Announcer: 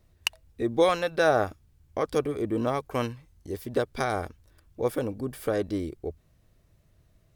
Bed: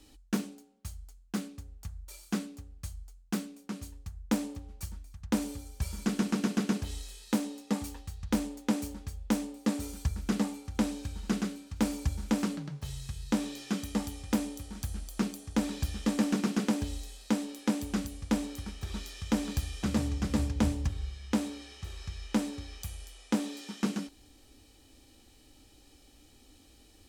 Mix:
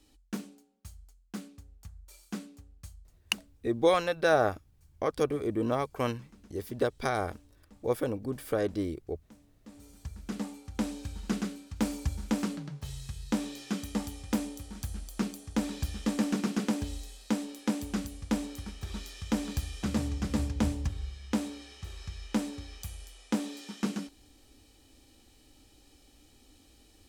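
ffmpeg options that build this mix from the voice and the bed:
-filter_complex "[0:a]adelay=3050,volume=0.794[s0];[1:a]volume=10.6,afade=t=out:st=2.8:d=0.77:silence=0.0841395,afade=t=in:st=9.62:d=1.48:silence=0.0473151[s1];[s0][s1]amix=inputs=2:normalize=0"

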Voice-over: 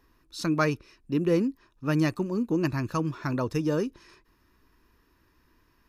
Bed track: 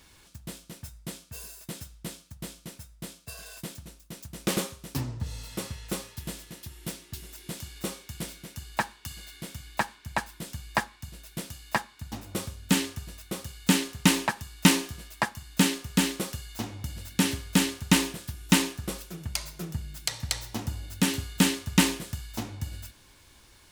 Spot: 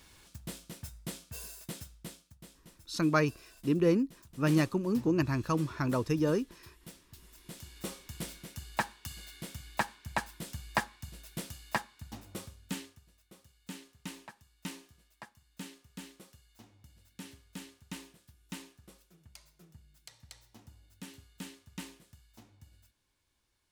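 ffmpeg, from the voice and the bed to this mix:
-filter_complex "[0:a]adelay=2550,volume=0.794[s0];[1:a]volume=2.66,afade=t=out:st=1.58:d=0.83:silence=0.251189,afade=t=in:st=7.21:d=1.06:silence=0.298538,afade=t=out:st=11.47:d=1.54:silence=0.112202[s1];[s0][s1]amix=inputs=2:normalize=0"

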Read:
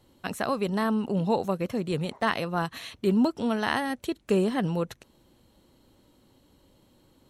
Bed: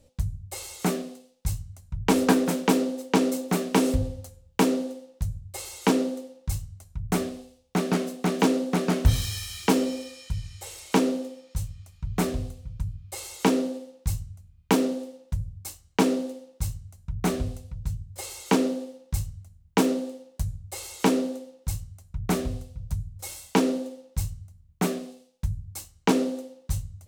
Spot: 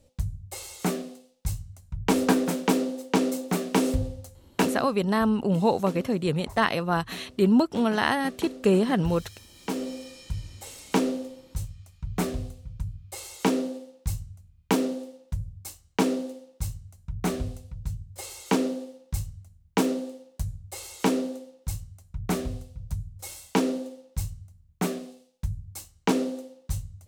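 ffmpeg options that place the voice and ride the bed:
-filter_complex "[0:a]adelay=4350,volume=1.41[s0];[1:a]volume=4.47,afade=t=out:st=4.57:d=0.41:silence=0.177828,afade=t=in:st=9.53:d=0.62:silence=0.188365[s1];[s0][s1]amix=inputs=2:normalize=0"

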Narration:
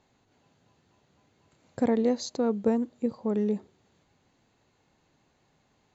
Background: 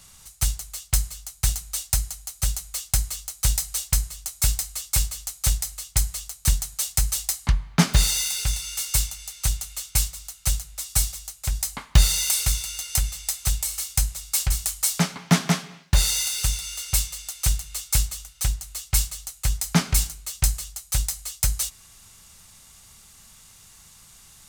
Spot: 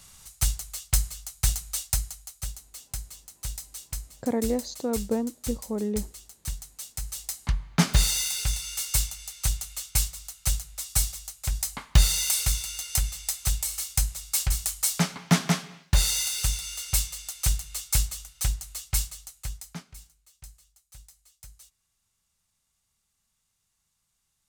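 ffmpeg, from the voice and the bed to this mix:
-filter_complex "[0:a]adelay=2450,volume=0.794[s0];[1:a]volume=2.82,afade=t=out:st=1.71:d=0.86:silence=0.266073,afade=t=in:st=6.99:d=0.91:silence=0.298538,afade=t=out:st=18.66:d=1.19:silence=0.0668344[s1];[s0][s1]amix=inputs=2:normalize=0"

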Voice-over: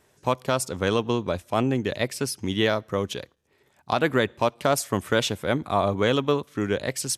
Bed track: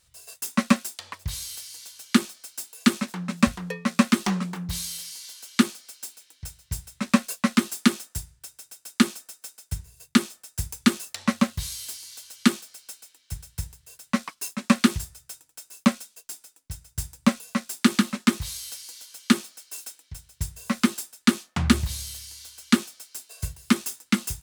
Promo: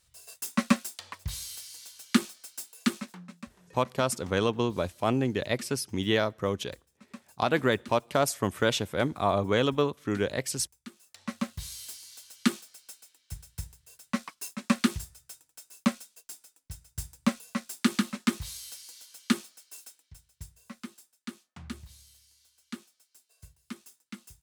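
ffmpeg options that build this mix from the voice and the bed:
-filter_complex "[0:a]adelay=3500,volume=0.708[s0];[1:a]volume=6.68,afade=t=out:st=2.54:d=0.91:silence=0.0749894,afade=t=in:st=10.96:d=0.83:silence=0.0944061,afade=t=out:st=19.2:d=1.59:silence=0.177828[s1];[s0][s1]amix=inputs=2:normalize=0"

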